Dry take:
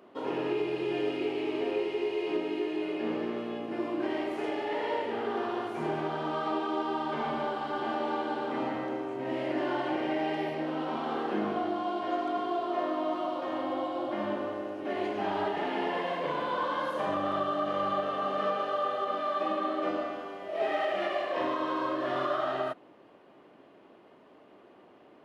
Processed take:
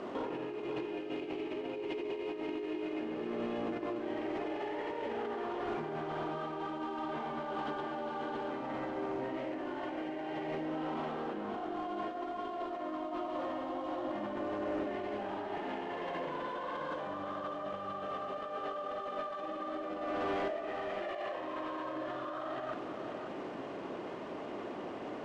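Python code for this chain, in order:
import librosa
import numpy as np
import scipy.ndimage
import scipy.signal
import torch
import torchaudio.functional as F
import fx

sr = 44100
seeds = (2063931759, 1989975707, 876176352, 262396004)

y = fx.cvsd(x, sr, bps=64000)
y = fx.over_compress(y, sr, threshold_db=-42.0, ratio=-1.0)
y = 10.0 ** (-35.0 / 20.0) * np.tanh(y / 10.0 ** (-35.0 / 20.0))
y = fx.air_absorb(y, sr, metres=160.0)
y = y + 10.0 ** (-7.0 / 20.0) * np.pad(y, (int(538 * sr / 1000.0), 0))[:len(y)]
y = y * 10.0 ** (5.0 / 20.0)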